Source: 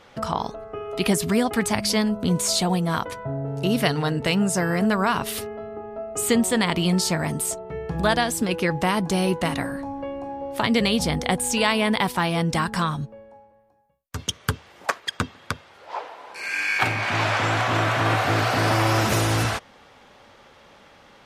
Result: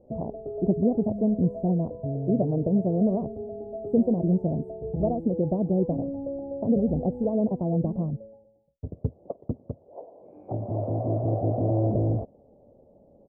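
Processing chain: elliptic low-pass 640 Hz, stop band 60 dB; tempo 1.6×

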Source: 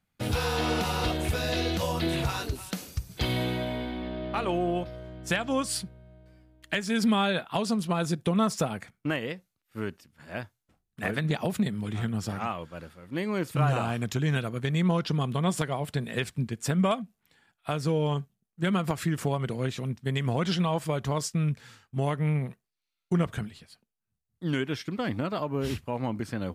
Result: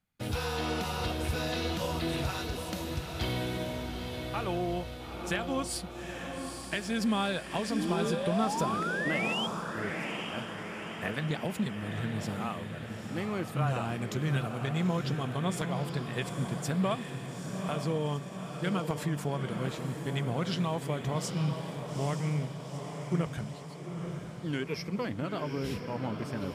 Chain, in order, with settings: 7.7–9.47 painted sound rise 260–3300 Hz -29 dBFS; 24.65–25.05 ripple EQ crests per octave 0.85, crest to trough 15 dB; diffused feedback echo 0.87 s, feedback 58%, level -6 dB; gain -5 dB

